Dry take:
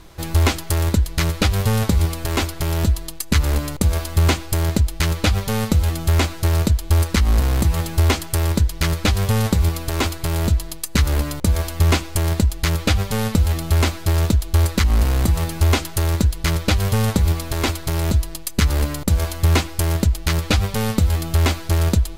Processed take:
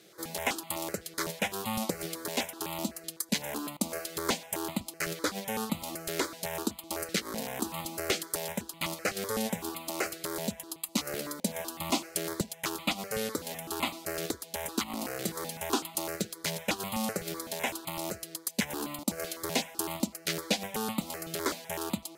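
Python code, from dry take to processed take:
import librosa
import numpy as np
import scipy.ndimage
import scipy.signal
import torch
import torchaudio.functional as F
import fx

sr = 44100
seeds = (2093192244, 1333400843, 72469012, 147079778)

y = scipy.signal.sosfilt(scipy.signal.butter(4, 200.0, 'highpass', fs=sr, output='sos'), x)
y = fx.phaser_held(y, sr, hz=7.9, low_hz=260.0, high_hz=1600.0)
y = F.gain(torch.from_numpy(y), -5.5).numpy()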